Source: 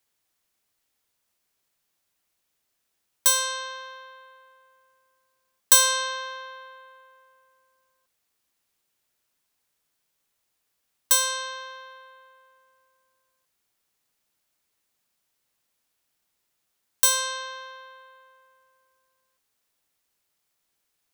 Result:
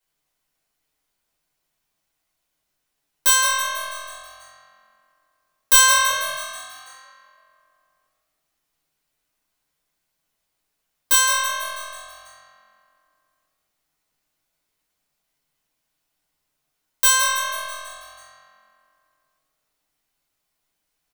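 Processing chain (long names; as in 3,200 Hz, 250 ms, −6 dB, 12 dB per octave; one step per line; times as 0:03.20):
0:06.10–0:06.87: high-pass filter 1,200 Hz 12 dB per octave
leveller curve on the samples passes 1
echo with shifted repeats 163 ms, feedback 58%, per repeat +44 Hz, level −9.5 dB
rectangular room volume 240 cubic metres, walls furnished, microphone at 5 metres
level −7 dB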